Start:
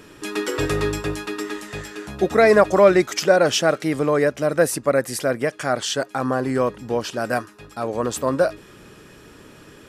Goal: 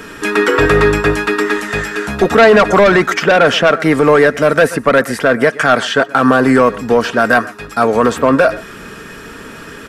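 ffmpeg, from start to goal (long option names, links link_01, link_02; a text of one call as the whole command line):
ffmpeg -i in.wav -filter_complex "[0:a]acrossover=split=360|2900[link_01][link_02][link_03];[link_03]acompressor=threshold=-43dB:ratio=6[link_04];[link_01][link_02][link_04]amix=inputs=3:normalize=0,equalizer=frequency=1500:width_type=o:width=0.91:gain=7.5,asplit=2[link_05][link_06];[link_06]aecho=0:1:123:0.0708[link_07];[link_05][link_07]amix=inputs=2:normalize=0,asoftclip=type=tanh:threshold=-14.5dB,aeval=exprs='0.188*(cos(1*acos(clip(val(0)/0.188,-1,1)))-cos(1*PI/2))+0.0133*(cos(3*acos(clip(val(0)/0.188,-1,1)))-cos(3*PI/2))+0.00133*(cos(7*acos(clip(val(0)/0.188,-1,1)))-cos(7*PI/2))':channel_layout=same,aecho=1:1:4.4:0.36,alimiter=level_in=15dB:limit=-1dB:release=50:level=0:latency=1,volume=-1dB" out.wav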